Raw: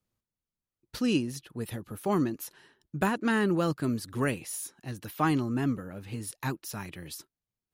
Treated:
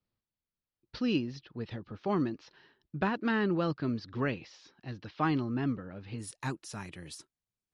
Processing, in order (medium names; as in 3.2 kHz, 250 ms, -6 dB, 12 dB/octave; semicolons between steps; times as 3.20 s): steep low-pass 5.2 kHz 48 dB/octave, from 6.18 s 10 kHz; trim -3 dB